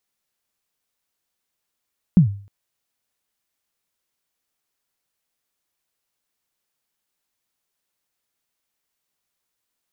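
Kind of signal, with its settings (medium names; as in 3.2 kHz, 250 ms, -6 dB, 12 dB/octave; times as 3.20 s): kick drum length 0.31 s, from 200 Hz, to 100 Hz, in 109 ms, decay 0.44 s, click off, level -5 dB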